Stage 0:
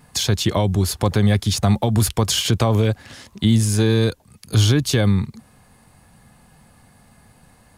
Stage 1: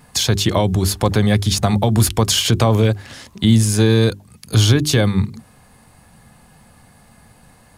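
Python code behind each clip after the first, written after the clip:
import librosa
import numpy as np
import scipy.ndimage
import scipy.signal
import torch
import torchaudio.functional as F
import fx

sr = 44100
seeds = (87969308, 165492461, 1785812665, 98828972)

y = fx.hum_notches(x, sr, base_hz=50, count=8)
y = y * 10.0 ** (3.5 / 20.0)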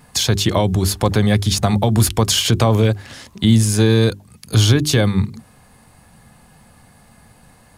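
y = x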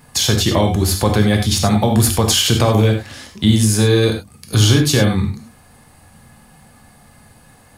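y = fx.high_shelf(x, sr, hz=11000.0, db=3.0)
y = fx.rev_gated(y, sr, seeds[0], gate_ms=120, shape='flat', drr_db=3.0)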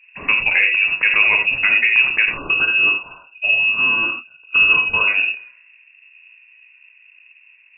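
y = fx.env_lowpass(x, sr, base_hz=420.0, full_db=-13.0)
y = fx.spec_erase(y, sr, start_s=2.37, length_s=2.71, low_hz=200.0, high_hz=1100.0)
y = fx.freq_invert(y, sr, carrier_hz=2700)
y = y * 10.0 ** (-1.0 / 20.0)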